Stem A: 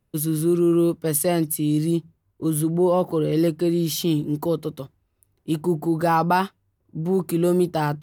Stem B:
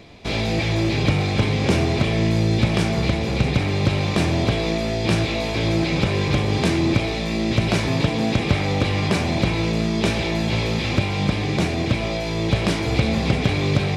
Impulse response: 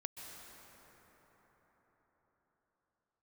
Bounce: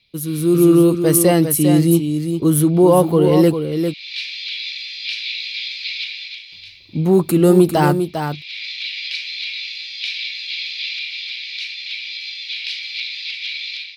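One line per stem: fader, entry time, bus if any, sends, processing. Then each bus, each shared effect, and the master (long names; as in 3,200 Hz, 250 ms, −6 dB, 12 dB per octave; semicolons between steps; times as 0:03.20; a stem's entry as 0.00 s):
−2.0 dB, 0.00 s, muted 0:03.54–0:06.52, no send, echo send −7.5 dB, no processing
−12.5 dB, 0.00 s, no send, no echo send, elliptic high-pass filter 2,300 Hz, stop band 80 dB; high shelf with overshoot 5,800 Hz −12 dB, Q 3; automatic ducking −20 dB, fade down 0.90 s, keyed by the first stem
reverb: not used
echo: single-tap delay 400 ms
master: automatic gain control gain up to 13 dB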